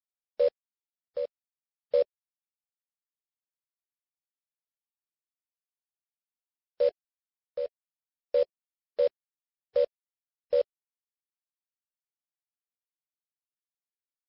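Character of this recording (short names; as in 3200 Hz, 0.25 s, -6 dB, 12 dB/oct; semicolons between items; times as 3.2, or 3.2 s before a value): a quantiser's noise floor 6-bit, dither none; chopped level 0.62 Hz, depth 60%, duty 65%; MP3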